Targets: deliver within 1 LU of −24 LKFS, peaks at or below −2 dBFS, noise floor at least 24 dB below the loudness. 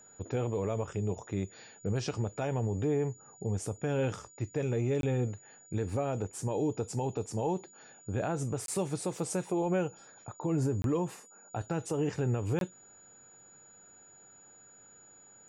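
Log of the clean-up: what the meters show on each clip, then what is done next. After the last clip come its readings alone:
number of dropouts 4; longest dropout 22 ms; interfering tone 6,900 Hz; level of the tone −55 dBFS; integrated loudness −33.5 LKFS; sample peak −22.0 dBFS; target loudness −24.0 LKFS
→ repair the gap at 0:05.01/0:08.66/0:10.82/0:12.59, 22 ms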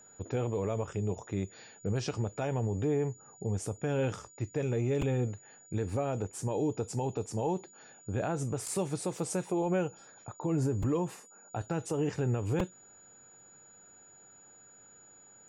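number of dropouts 0; interfering tone 6,900 Hz; level of the tone −55 dBFS
→ notch filter 6,900 Hz, Q 30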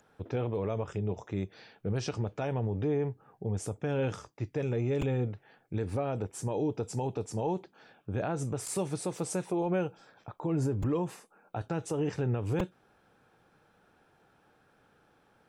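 interfering tone none found; integrated loudness −33.5 LKFS; sample peak −17.5 dBFS; target loudness −24.0 LKFS
→ level +9.5 dB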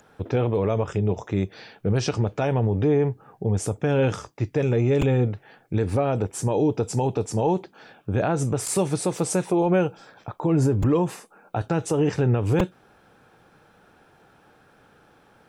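integrated loudness −24.0 LKFS; sample peak −8.0 dBFS; background noise floor −58 dBFS

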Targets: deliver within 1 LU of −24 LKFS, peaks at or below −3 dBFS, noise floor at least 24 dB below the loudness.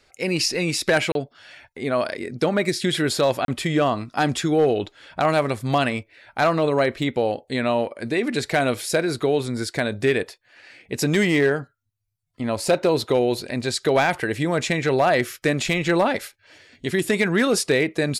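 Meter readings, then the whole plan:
share of clipped samples 0.3%; peaks flattened at −11.0 dBFS; number of dropouts 2; longest dropout 32 ms; integrated loudness −22.0 LKFS; sample peak −11.0 dBFS; target loudness −24.0 LKFS
→ clipped peaks rebuilt −11 dBFS
repair the gap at 0:01.12/0:03.45, 32 ms
level −2 dB

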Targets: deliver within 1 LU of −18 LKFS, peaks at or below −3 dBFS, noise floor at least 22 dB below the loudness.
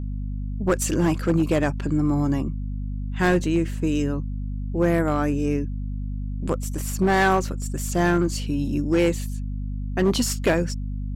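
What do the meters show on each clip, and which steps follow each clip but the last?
share of clipped samples 1.0%; peaks flattened at −13.5 dBFS; mains hum 50 Hz; hum harmonics up to 250 Hz; level of the hum −26 dBFS; integrated loudness −24.0 LKFS; sample peak −13.5 dBFS; target loudness −18.0 LKFS
→ clipped peaks rebuilt −13.5 dBFS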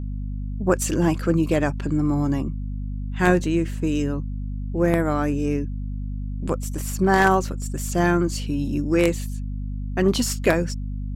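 share of clipped samples 0.0%; mains hum 50 Hz; hum harmonics up to 250 Hz; level of the hum −26 dBFS
→ hum removal 50 Hz, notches 5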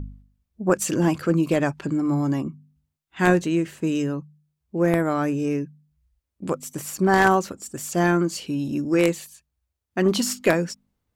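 mains hum none found; integrated loudness −23.0 LKFS; sample peak −4.5 dBFS; target loudness −18.0 LKFS
→ level +5 dB
brickwall limiter −3 dBFS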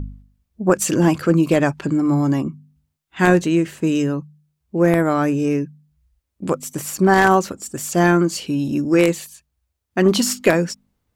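integrated loudness −18.5 LKFS; sample peak −3.0 dBFS; background noise floor −76 dBFS

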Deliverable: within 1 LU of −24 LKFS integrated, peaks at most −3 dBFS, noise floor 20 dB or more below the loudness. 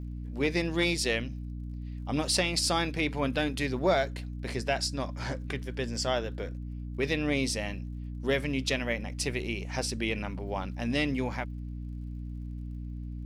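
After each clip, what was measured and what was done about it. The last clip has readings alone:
crackle rate 39 per second; mains hum 60 Hz; hum harmonics up to 300 Hz; level of the hum −35 dBFS; integrated loudness −31.0 LKFS; sample peak −15.5 dBFS; target loudness −24.0 LKFS
→ click removal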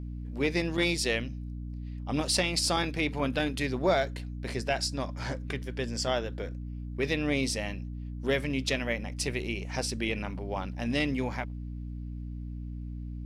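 crackle rate 0 per second; mains hum 60 Hz; hum harmonics up to 300 Hz; level of the hum −35 dBFS
→ hum removal 60 Hz, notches 5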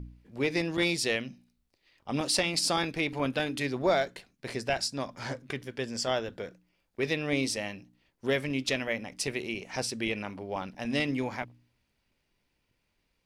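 mains hum none found; integrated loudness −31.0 LKFS; sample peak −16.0 dBFS; target loudness −24.0 LKFS
→ level +7 dB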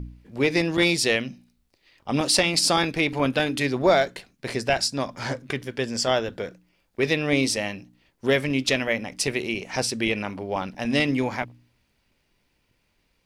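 integrated loudness −24.0 LKFS; sample peak −9.0 dBFS; background noise floor −70 dBFS

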